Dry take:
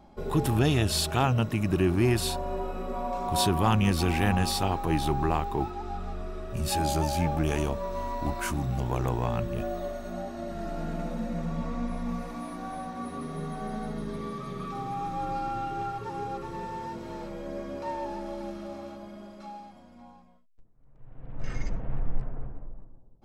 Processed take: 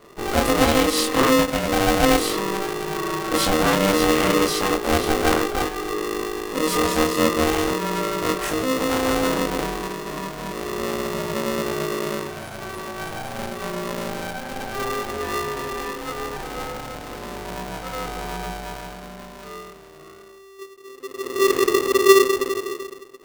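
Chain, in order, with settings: bucket-brigade echo 82 ms, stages 2048, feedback 83%, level -21.5 dB; chorus voices 6, 0.14 Hz, delay 24 ms, depth 1.6 ms; polarity switched at an audio rate 390 Hz; trim +7.5 dB

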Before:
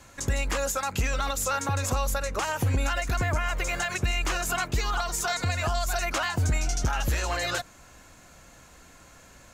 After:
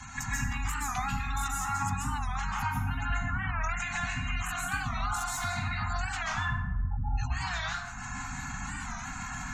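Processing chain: 6.22–7.18 s: spectral contrast enhancement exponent 3.2; Chebyshev shaper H 6 -15 dB, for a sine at -17 dBFS; compression 12:1, threshold -43 dBFS, peak gain reduction 22 dB; Chebyshev band-stop 260–750 Hz, order 4; spectral gate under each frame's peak -20 dB strong; plate-style reverb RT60 1.1 s, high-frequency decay 0.45×, pre-delay 120 ms, DRR -7 dB; warped record 45 rpm, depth 160 cents; trim +9 dB

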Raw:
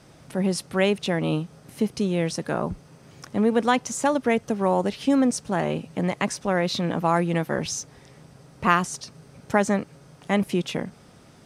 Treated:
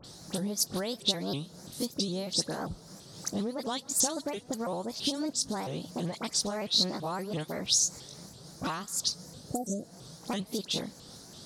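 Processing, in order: sawtooth pitch modulation +2.5 st, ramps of 189 ms; spectral replace 9.25–9.96 s, 750–6500 Hz; compression 6:1, threshold -31 dBFS, peak gain reduction 16.5 dB; resonant high shelf 3.3 kHz +8.5 dB, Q 3; phase dispersion highs, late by 47 ms, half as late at 2.1 kHz; on a send at -24 dB: reverberation RT60 1.0 s, pre-delay 120 ms; on the sum: vibrato with a chosen wave saw up 3 Hz, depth 250 cents

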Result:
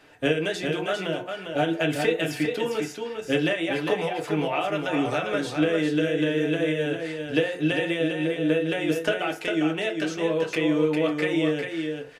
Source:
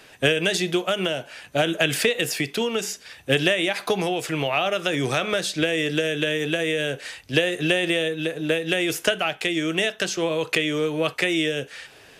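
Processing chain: treble shelf 3.1 kHz -9.5 dB; on a send: delay 402 ms -5.5 dB; on the sum: FDN reverb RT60 0.34 s, low-frequency decay 0.75×, high-frequency decay 0.45×, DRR 1 dB; trim -5 dB

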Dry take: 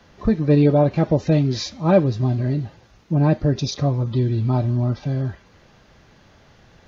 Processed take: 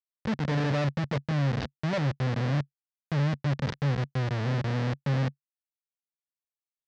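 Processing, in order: Schmitt trigger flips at -20.5 dBFS; cabinet simulation 110–5300 Hz, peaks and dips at 140 Hz +7 dB, 230 Hz +4 dB, 340 Hz -5 dB, 520 Hz +4 dB, 1.8 kHz +5 dB; trim -8 dB

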